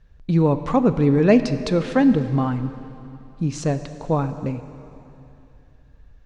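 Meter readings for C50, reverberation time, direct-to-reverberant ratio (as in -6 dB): 11.0 dB, 2.8 s, 10.5 dB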